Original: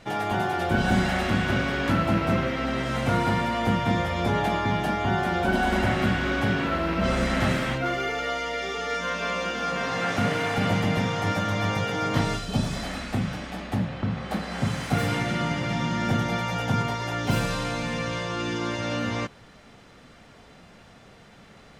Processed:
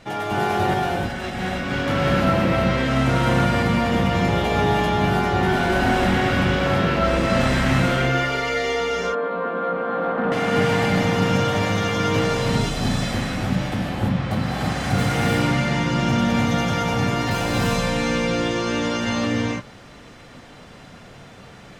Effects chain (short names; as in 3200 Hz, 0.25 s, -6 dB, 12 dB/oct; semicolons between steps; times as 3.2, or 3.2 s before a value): 0.74–1.73 negative-ratio compressor -31 dBFS, ratio -0.5; 8.8–10.32 Chebyshev band-pass 190–1400 Hz, order 3; soft clip -20 dBFS, distortion -15 dB; non-linear reverb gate 0.36 s rising, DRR -3.5 dB; gain +2 dB